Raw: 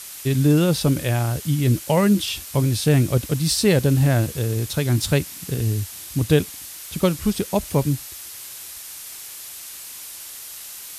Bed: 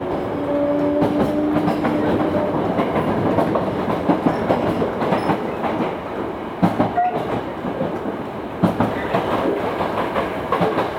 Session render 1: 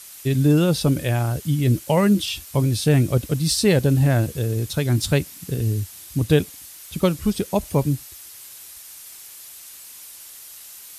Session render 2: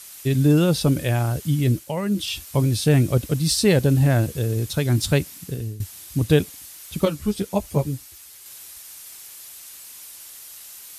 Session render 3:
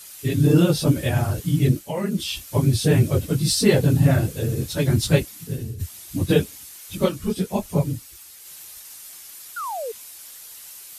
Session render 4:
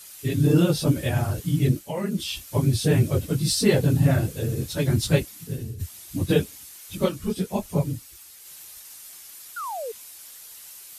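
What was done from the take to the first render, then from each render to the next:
noise reduction 6 dB, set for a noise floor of -37 dBFS
1.63–2.34 s: dip -8.5 dB, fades 0.29 s; 5.36–5.80 s: fade out, to -16.5 dB; 7.05–8.46 s: three-phase chorus
phase randomisation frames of 50 ms; 9.56–9.92 s: painted sound fall 420–1500 Hz -29 dBFS
trim -2.5 dB

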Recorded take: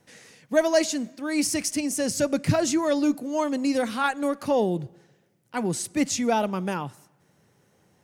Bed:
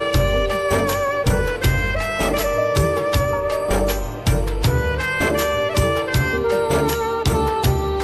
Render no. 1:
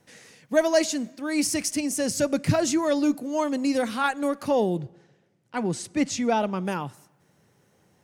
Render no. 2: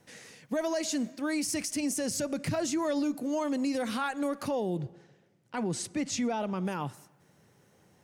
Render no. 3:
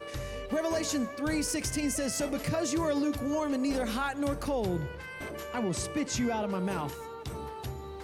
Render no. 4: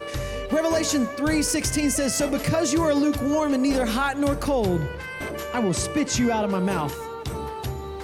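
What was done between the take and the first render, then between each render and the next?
4.79–6.65 s: distance through air 53 m
compression 2:1, threshold -25 dBFS, peak gain reduction 6 dB; peak limiter -23 dBFS, peak gain reduction 9 dB
add bed -20.5 dB
trim +8 dB

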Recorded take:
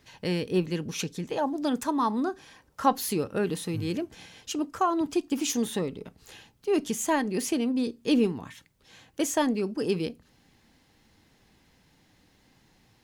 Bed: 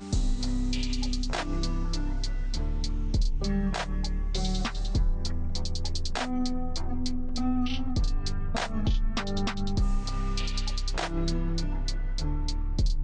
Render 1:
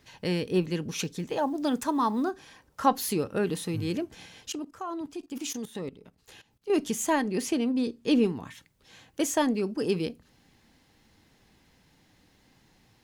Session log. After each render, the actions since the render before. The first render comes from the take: 0.99–2.31 s: companded quantiser 8-bit; 4.50–6.70 s: level held to a coarse grid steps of 17 dB; 7.27–8.26 s: treble shelf 9.4 kHz -7 dB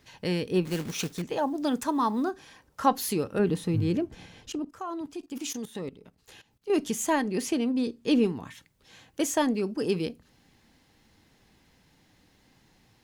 0.65–1.22 s: companded quantiser 4-bit; 3.39–4.69 s: tilt EQ -2 dB/octave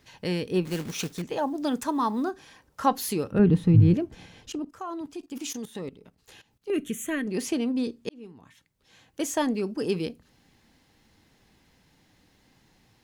3.31–3.94 s: tone controls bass +12 dB, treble -10 dB; 6.70–7.27 s: static phaser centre 2.1 kHz, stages 4; 8.09–9.53 s: fade in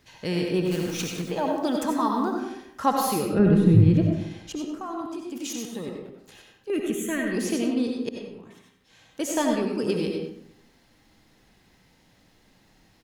on a send: delay 96 ms -10.5 dB; on the sum: algorithmic reverb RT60 0.76 s, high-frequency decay 0.55×, pre-delay 45 ms, DRR 1.5 dB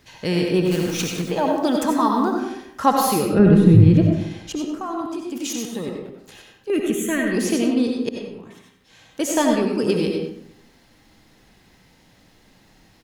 trim +5.5 dB; peak limiter -2 dBFS, peak gain reduction 1.5 dB

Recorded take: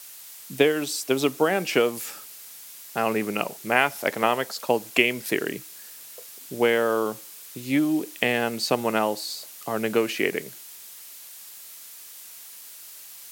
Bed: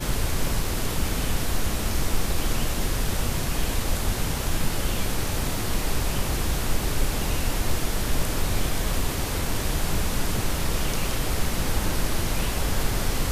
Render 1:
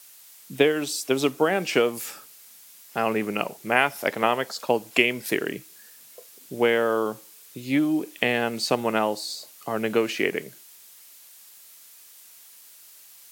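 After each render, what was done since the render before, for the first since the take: noise print and reduce 6 dB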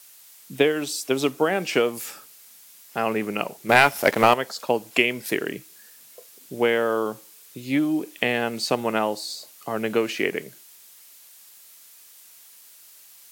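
3.69–4.34 s: waveshaping leveller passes 2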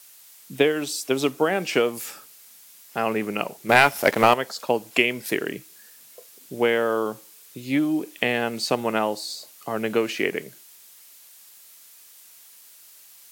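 no audible change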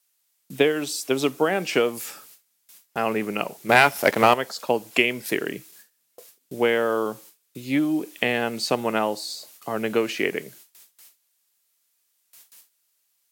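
gate with hold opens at -37 dBFS; high-pass 58 Hz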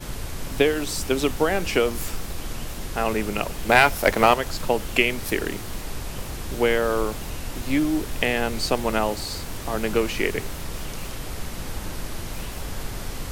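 add bed -7 dB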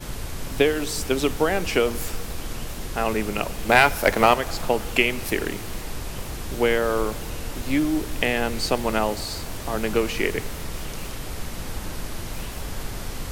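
plate-style reverb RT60 4.1 s, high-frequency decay 0.8×, DRR 18.5 dB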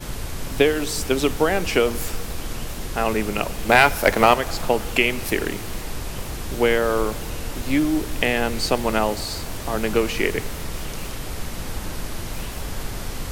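trim +2 dB; peak limiter -2 dBFS, peak gain reduction 2 dB

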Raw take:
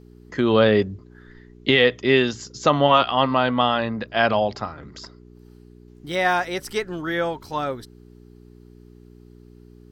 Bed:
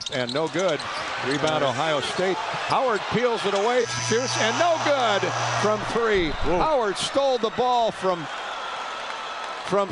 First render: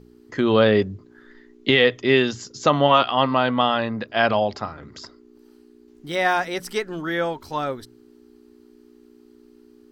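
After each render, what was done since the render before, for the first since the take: de-hum 60 Hz, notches 3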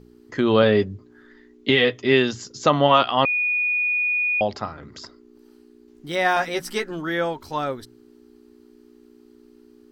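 0.62–2.12 s: comb of notches 170 Hz; 3.25–4.41 s: bleep 2.46 kHz -19 dBFS; 6.35–6.91 s: doubling 13 ms -4 dB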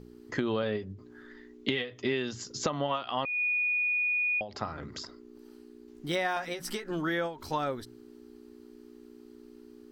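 compression 8:1, threshold -27 dBFS, peak gain reduction 16 dB; endings held to a fixed fall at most 150 dB/s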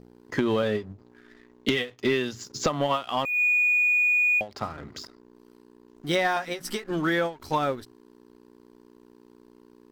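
waveshaping leveller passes 2; upward expansion 1.5:1, over -33 dBFS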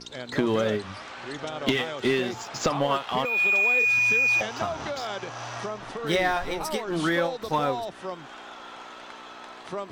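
add bed -11.5 dB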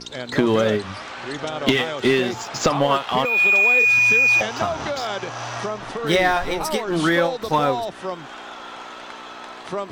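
trim +6 dB

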